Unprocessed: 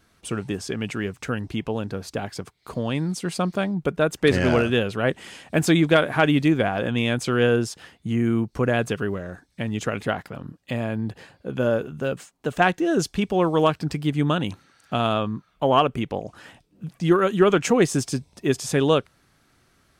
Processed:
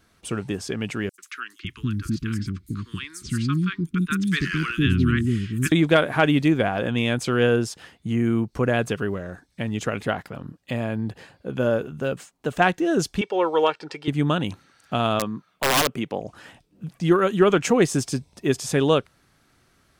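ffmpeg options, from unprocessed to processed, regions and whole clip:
-filter_complex "[0:a]asettb=1/sr,asplit=3[a][b][c];[a]atrim=end=1.094[d];[b]atrim=start=1.09:end=5.72,asetpts=PTS-STARTPTS,afade=t=in:d=0.004:c=qsin,afade=t=out:st=4.626:d=0.004:c=qsin,asuperstop=centerf=640:order=8:qfactor=0.76,lowshelf=f=170:g=7,acrossover=split=530|5900[e][f][g];[f]adelay=90[h];[e]adelay=550[i];[i][h][g]amix=inputs=3:normalize=0,atrim=end_sample=204183[j];[c]atrim=start=5.716[k];[d][j]acrossfade=d=0.004:c1=hsin:c2=qsin[l];[l][k]acrossfade=d=0.004:c1=qsin:c2=hsin,asettb=1/sr,asplit=3[m][n][o];[m]atrim=end=13.214[p];[n]atrim=start=13.21:end=14.08,asetpts=PTS-STARTPTS,afade=t=in:d=0.004:c=qsin,afade=t=out:st=0.866:d=0.004:c=qsin,highpass=420,lowpass=5k,aecho=1:1:2.2:0.57,atrim=end_sample=38367[q];[o]atrim=start=14.076[r];[p][q]acrossfade=d=0.004:c1=hsin:c2=qsin[s];[s][r]acrossfade=d=0.004:c1=qsin:c2=hsin,asettb=1/sr,asplit=3[t][u][v];[t]atrim=end=15.194[w];[u]atrim=start=15.19:end=16.2,asetpts=PTS-STARTPTS,afade=t=in:d=0.004:c=qsin,afade=t=out:st=1.006:d=0.004:c=qsin,highpass=150,aeval=exprs='(mod(4.22*val(0)+1,2)-1)/4.22':c=same[x];[v]atrim=start=16.196[y];[w][x]acrossfade=d=0.004:c1=hsin:c2=qsin[z];[z][y]acrossfade=d=0.004:c1=qsin:c2=hsin"

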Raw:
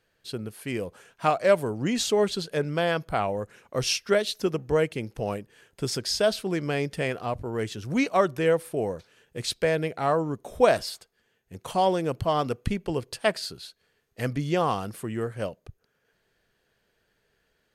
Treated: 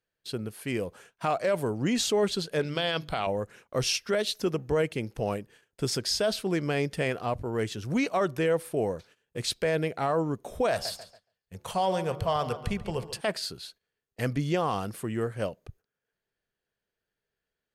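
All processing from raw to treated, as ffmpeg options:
-filter_complex "[0:a]asettb=1/sr,asplit=3[a][b][c];[a]atrim=end=2.594[d];[b]atrim=start=2.59:end=3.27,asetpts=PTS-STARTPTS,afade=t=in:d=0.004:c=qsin,afade=t=out:st=0.676:d=0.004:c=qsin,equalizer=f=3.6k:t=o:w=1.1:g=13,bandreject=f=50:t=h:w=6,bandreject=f=100:t=h:w=6,bandreject=f=150:t=h:w=6,bandreject=f=200:t=h:w=6,bandreject=f=250:t=h:w=6,bandreject=f=300:t=h:w=6,bandreject=f=350:t=h:w=6[e];[c]atrim=start=3.266[f];[d][e]acrossfade=d=0.004:c1=hsin:c2=qsin[g];[g][f]acrossfade=d=0.004:c1=qsin:c2=hsin,asettb=1/sr,asplit=3[h][i][j];[h]atrim=end=10.714[k];[i]atrim=start=10.71:end=13.21,asetpts=PTS-STARTPTS,afade=t=in:d=0.004:c=qsin,afade=t=out:st=2.496:d=0.004:c=qsin,equalizer=f=300:w=2.5:g=-12,bandreject=f=71.86:t=h:w=4,bandreject=f=143.72:t=h:w=4,bandreject=f=215.58:t=h:w=4,bandreject=f=287.44:t=h:w=4,bandreject=f=359.3:t=h:w=4,bandreject=f=431.16:t=h:w=4,bandreject=f=503.02:t=h:w=4,bandreject=f=574.88:t=h:w=4,bandreject=f=646.74:t=h:w=4,bandreject=f=718.6:t=h:w=4,bandreject=f=790.46:t=h:w=4,bandreject=f=862.32:t=h:w=4,bandreject=f=934.18:t=h:w=4,bandreject=f=1.00604k:t=h:w=4,bandreject=f=1.0779k:t=h:w=4,bandreject=f=1.14976k:t=h:w=4,bandreject=f=1.22162k:t=h:w=4,bandreject=f=1.29348k:t=h:w=4,bandreject=f=1.36534k:t=h:w=4,bandreject=f=1.4372k:t=h:w=4,asplit=2[l][m];[m]adelay=140,lowpass=f=4.8k:p=1,volume=-13.5dB,asplit=2[n][o];[o]adelay=140,lowpass=f=4.8k:p=1,volume=0.41,asplit=2[p][q];[q]adelay=140,lowpass=f=4.8k:p=1,volume=0.41,asplit=2[r][s];[s]adelay=140,lowpass=f=4.8k:p=1,volume=0.41[t];[l][n][p][r][t]amix=inputs=5:normalize=0,atrim=end_sample=110250[u];[j]atrim=start=13.206[v];[k][u]acrossfade=d=0.004:c1=hsin:c2=qsin[w];[w][v]acrossfade=d=0.004:c1=qsin:c2=hsin,agate=range=-16dB:threshold=-52dB:ratio=16:detection=peak,alimiter=limit=-17.5dB:level=0:latency=1:release=21"

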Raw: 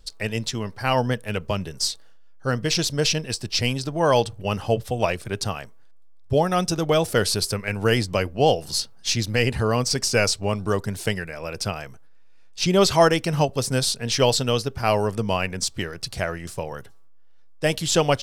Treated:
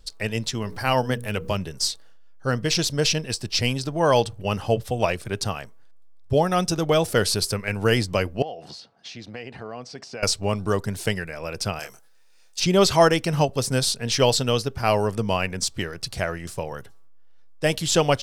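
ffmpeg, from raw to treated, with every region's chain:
-filter_complex "[0:a]asettb=1/sr,asplit=3[a][b][c];[a]atrim=end=0.624[d];[b]atrim=start=0.62:end=1.58,asetpts=PTS-STARTPTS,afade=t=in:d=0.004:c=qsin,afade=t=out:st=0.956:d=0.004:c=qsin,highshelf=f=12k:g=9,bandreject=f=60:t=h:w=6,bandreject=f=120:t=h:w=6,bandreject=f=180:t=h:w=6,bandreject=f=240:t=h:w=6,bandreject=f=300:t=h:w=6,bandreject=f=360:t=h:w=6,bandreject=f=420:t=h:w=6,bandreject=f=480:t=h:w=6,acompressor=mode=upward:threshold=-25dB:ratio=2.5:attack=3.2:release=140:knee=2.83:detection=peak[e];[c]atrim=start=1.576[f];[d][e]acrossfade=d=0.004:c1=hsin:c2=qsin[g];[g][f]acrossfade=d=0.004:c1=qsin:c2=hsin,asettb=1/sr,asplit=3[h][i][j];[h]atrim=end=8.424[k];[i]atrim=start=8.42:end=10.23,asetpts=PTS-STARTPTS,afade=t=in:d=0.004:c=qsin,afade=t=out:st=1.806:d=0.004:c=qsin,equalizer=f=710:w=5.4:g=8.5,acompressor=threshold=-31dB:ratio=6:attack=3.2:release=140:knee=1:detection=peak,highpass=170,lowpass=3.7k[l];[j]atrim=start=10.226[m];[k][l]acrossfade=d=0.004:c1=hsin:c2=qsin[n];[n][m]acrossfade=d=0.004:c1=qsin:c2=hsin,asettb=1/sr,asplit=3[o][p][q];[o]atrim=end=11.794[r];[p]atrim=start=11.79:end=12.6,asetpts=PTS-STARTPTS,afade=t=in:d=0.004:c=qsin,afade=t=out:st=0.806:d=0.004:c=qsin,bass=f=250:g=-13,treble=f=4k:g=12,asplit=2[s][t];[t]adelay=26,volume=-4.5dB[u];[s][u]amix=inputs=2:normalize=0,atrim=end_sample=35721[v];[q]atrim=start=12.596[w];[r][v]acrossfade=d=0.004:c1=hsin:c2=qsin[x];[x][w]acrossfade=d=0.004:c1=qsin:c2=hsin"

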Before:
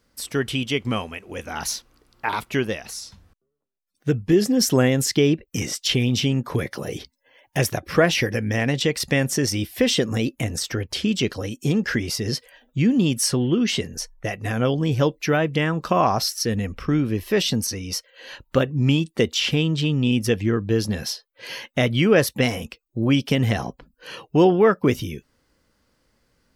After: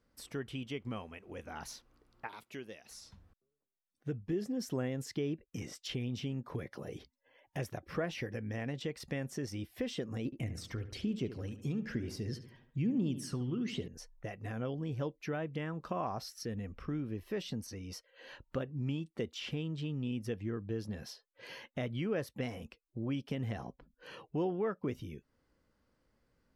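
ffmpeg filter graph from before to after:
-filter_complex "[0:a]asettb=1/sr,asplit=3[a][b][c];[a]atrim=end=2.274[d];[b]atrim=start=2.27:end=2.91,asetpts=PTS-STARTPTS,afade=t=in:d=0.004:c=qsin,afade=t=out:st=0.636:d=0.004:c=qsin,highpass=f=600:p=1,equalizer=f=1.1k:w=0.54:g=-9.5[e];[c]atrim=start=2.906[f];[d][e]acrossfade=d=0.004:c1=hsin:c2=qsin[g];[g][f]acrossfade=d=0.004:c1=qsin:c2=hsin,asettb=1/sr,asplit=3[h][i][j];[h]atrim=end=10.254[k];[i]atrim=start=10.25:end=13.88,asetpts=PTS-STARTPTS,afade=t=in:d=0.004:c=qsin,afade=t=out:st=3.626:d=0.004:c=qsin,deesser=0.3,aphaser=in_gain=1:out_gain=1:delay=1:decay=0.46:speed=1.1:type=triangular,asplit=2[l][m];[m]adelay=72,lowpass=f=3.4k:p=1,volume=-12dB,asplit=2[n][o];[o]adelay=72,lowpass=f=3.4k:p=1,volume=0.45,asplit=2[p][q];[q]adelay=72,lowpass=f=3.4k:p=1,volume=0.45,asplit=2[r][s];[s]adelay=72,lowpass=f=3.4k:p=1,volume=0.45,asplit=2[t][u];[u]adelay=72,lowpass=f=3.4k:p=1,volume=0.45[v];[l][n][p][r][t][v]amix=inputs=6:normalize=0,atrim=end_sample=160083[w];[j]atrim=start=13.876[x];[k][w]acrossfade=d=0.004:c1=hsin:c2=qsin[y];[y][x]acrossfade=d=0.004:c1=qsin:c2=hsin,highshelf=f=2.6k:g=-10,acompressor=threshold=-41dB:ratio=1.5,volume=-8dB"

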